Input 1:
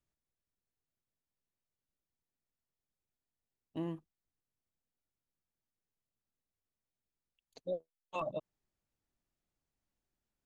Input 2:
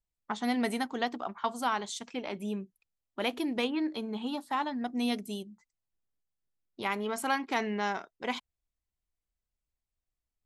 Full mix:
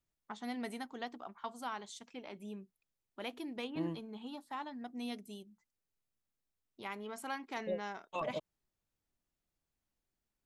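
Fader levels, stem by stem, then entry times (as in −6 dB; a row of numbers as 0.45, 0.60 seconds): −0.5, −11.0 decibels; 0.00, 0.00 seconds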